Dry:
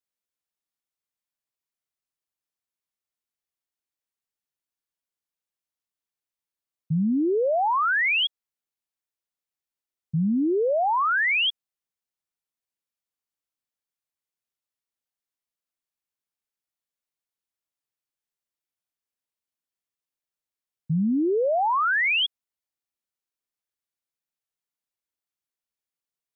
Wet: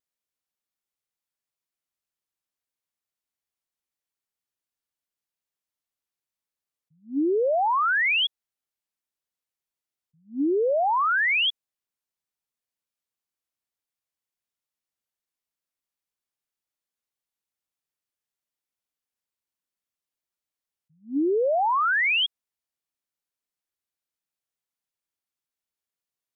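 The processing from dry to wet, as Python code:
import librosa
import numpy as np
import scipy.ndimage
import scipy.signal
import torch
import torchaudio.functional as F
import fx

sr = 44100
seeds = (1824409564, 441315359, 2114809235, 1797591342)

y = fx.wow_flutter(x, sr, seeds[0], rate_hz=2.1, depth_cents=22.0)
y = fx.attack_slew(y, sr, db_per_s=240.0)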